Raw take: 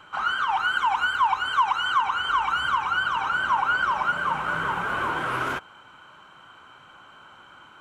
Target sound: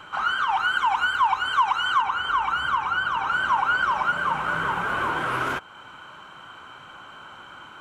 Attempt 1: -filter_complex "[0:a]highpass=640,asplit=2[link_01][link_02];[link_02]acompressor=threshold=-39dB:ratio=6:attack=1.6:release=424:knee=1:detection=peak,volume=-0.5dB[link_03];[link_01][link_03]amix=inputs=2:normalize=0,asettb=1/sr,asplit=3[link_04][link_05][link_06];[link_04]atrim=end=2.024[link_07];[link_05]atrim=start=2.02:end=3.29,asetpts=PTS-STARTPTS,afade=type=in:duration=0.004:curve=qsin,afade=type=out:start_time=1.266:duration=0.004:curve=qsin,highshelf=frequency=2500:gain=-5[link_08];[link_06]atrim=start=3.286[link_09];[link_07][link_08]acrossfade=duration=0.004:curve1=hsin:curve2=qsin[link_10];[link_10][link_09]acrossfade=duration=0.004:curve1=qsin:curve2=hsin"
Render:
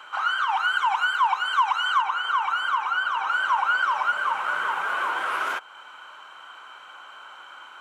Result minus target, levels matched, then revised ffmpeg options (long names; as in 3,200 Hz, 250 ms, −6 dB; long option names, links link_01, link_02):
500 Hz band −4.5 dB
-filter_complex "[0:a]asplit=2[link_01][link_02];[link_02]acompressor=threshold=-39dB:ratio=6:attack=1.6:release=424:knee=1:detection=peak,volume=-0.5dB[link_03];[link_01][link_03]amix=inputs=2:normalize=0,asettb=1/sr,asplit=3[link_04][link_05][link_06];[link_04]atrim=end=2.024[link_07];[link_05]atrim=start=2.02:end=3.29,asetpts=PTS-STARTPTS,afade=type=in:duration=0.004:curve=qsin,afade=type=out:start_time=1.266:duration=0.004:curve=qsin,highshelf=frequency=2500:gain=-5[link_08];[link_06]atrim=start=3.286[link_09];[link_07][link_08]acrossfade=duration=0.004:curve1=hsin:curve2=qsin[link_10];[link_10][link_09]acrossfade=duration=0.004:curve1=qsin:curve2=hsin"